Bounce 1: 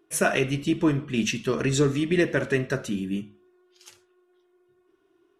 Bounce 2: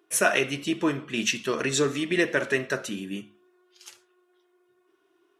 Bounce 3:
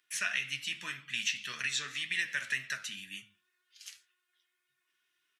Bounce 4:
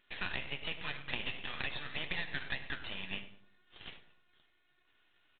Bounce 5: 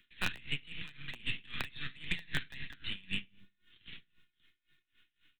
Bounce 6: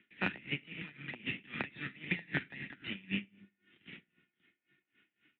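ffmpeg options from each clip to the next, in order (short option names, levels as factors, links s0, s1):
-af "highpass=f=570:p=1,volume=1.41"
-filter_complex "[0:a]firequalizer=gain_entry='entry(180,0);entry(340,-20);entry(1800,12)':delay=0.05:min_phase=1,acrossover=split=110|320|5600[s0][s1][s2][s3];[s0]acompressor=threshold=0.00178:ratio=4[s4];[s1]acompressor=threshold=0.00447:ratio=4[s5];[s2]acompressor=threshold=0.141:ratio=4[s6];[s3]acompressor=threshold=0.0158:ratio=4[s7];[s4][s5][s6][s7]amix=inputs=4:normalize=0,flanger=delay=6.5:depth=5.8:regen=61:speed=1.9:shape=triangular,volume=0.398"
-filter_complex "[0:a]acompressor=threshold=0.00631:ratio=4,aresample=8000,aeval=exprs='max(val(0),0)':c=same,aresample=44100,asplit=2[s0][s1];[s1]adelay=100,lowpass=f=1100:p=1,volume=0.282,asplit=2[s2][s3];[s3]adelay=100,lowpass=f=1100:p=1,volume=0.44,asplit=2[s4][s5];[s5]adelay=100,lowpass=f=1100:p=1,volume=0.44,asplit=2[s6][s7];[s7]adelay=100,lowpass=f=1100:p=1,volume=0.44,asplit=2[s8][s9];[s9]adelay=100,lowpass=f=1100:p=1,volume=0.44[s10];[s0][s2][s4][s6][s8][s10]amix=inputs=6:normalize=0,volume=3.55"
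-filter_complex "[0:a]acrossover=split=210|310|1500[s0][s1][s2][s3];[s2]acrusher=bits=5:mix=0:aa=0.000001[s4];[s3]asoftclip=type=tanh:threshold=0.0335[s5];[s0][s1][s4][s5]amix=inputs=4:normalize=0,aeval=exprs='val(0)*pow(10,-22*(0.5-0.5*cos(2*PI*3.8*n/s))/20)':c=same,volume=2.37"
-af "highpass=190,equalizer=f=200:t=q:w=4:g=4,equalizer=f=320:t=q:w=4:g=3,equalizer=f=1100:t=q:w=4:g=-9,equalizer=f=1600:t=q:w=4:g=-6,lowpass=f=2200:w=0.5412,lowpass=f=2200:w=1.3066,volume=2.24"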